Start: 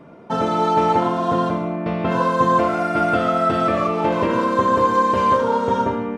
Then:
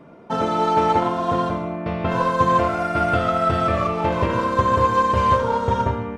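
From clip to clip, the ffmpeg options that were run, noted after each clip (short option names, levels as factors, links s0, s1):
-af "asubboost=boost=10:cutoff=83,aeval=exprs='0.631*(cos(1*acos(clip(val(0)/0.631,-1,1)))-cos(1*PI/2))+0.0158*(cos(7*acos(clip(val(0)/0.631,-1,1)))-cos(7*PI/2))':c=same"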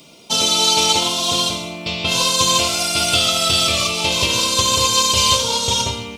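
-af "aexciter=amount=14.3:drive=9.8:freq=2800,volume=0.668"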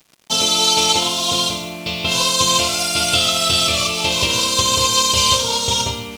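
-af "acrusher=bits=5:mix=0:aa=0.5"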